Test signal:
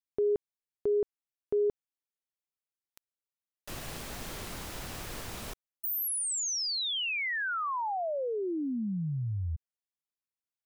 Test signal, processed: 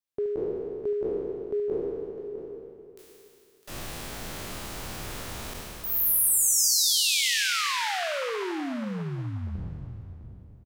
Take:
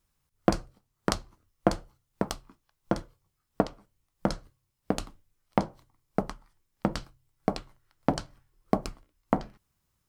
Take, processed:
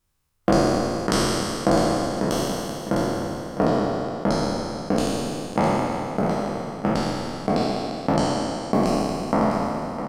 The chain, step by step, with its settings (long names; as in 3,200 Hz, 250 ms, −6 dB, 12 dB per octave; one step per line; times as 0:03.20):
peak hold with a decay on every bin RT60 2.73 s
multi-tap delay 74/656 ms −11.5/−10 dB
level −1 dB